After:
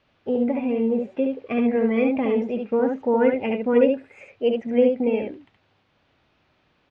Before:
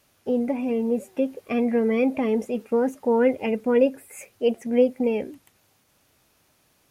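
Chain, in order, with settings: LPF 3700 Hz 24 dB/oct; on a send: echo 71 ms -4 dB

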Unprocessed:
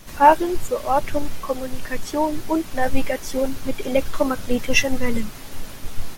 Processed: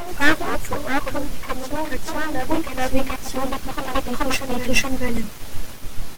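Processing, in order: reverse echo 0.429 s -4.5 dB; full-wave rectifier

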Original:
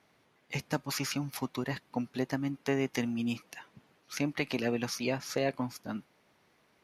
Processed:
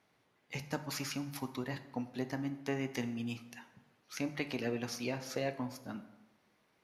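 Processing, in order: plate-style reverb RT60 1 s, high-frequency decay 0.6×, DRR 9 dB; gain -5.5 dB

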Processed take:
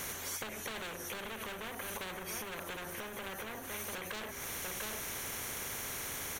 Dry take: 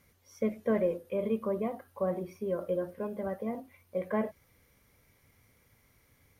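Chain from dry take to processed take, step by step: bell 6100 Hz +11.5 dB 0.32 oct; overloaded stage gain 32.5 dB; notches 50/100/150/200/250/300/350/400 Hz; echo 0.695 s -18.5 dB; limiter -38 dBFS, peak gain reduction 10 dB; compressor, threshold -52 dBFS, peak gain reduction 11 dB; thirty-one-band EQ 400 Hz +11 dB, 1600 Hz +9 dB, 5000 Hz -10 dB; spectral compressor 4:1; gain +12 dB

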